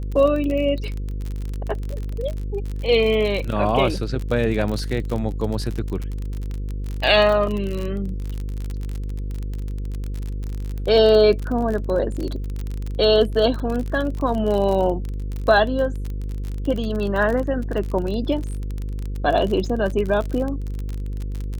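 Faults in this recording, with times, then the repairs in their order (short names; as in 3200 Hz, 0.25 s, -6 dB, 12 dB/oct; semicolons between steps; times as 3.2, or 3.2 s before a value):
buzz 50 Hz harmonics 10 -27 dBFS
crackle 39/s -25 dBFS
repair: de-click; de-hum 50 Hz, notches 10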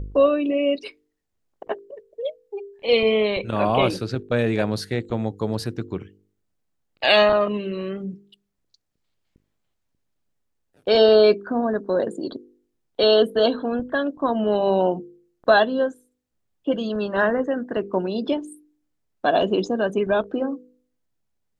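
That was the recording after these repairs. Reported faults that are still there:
none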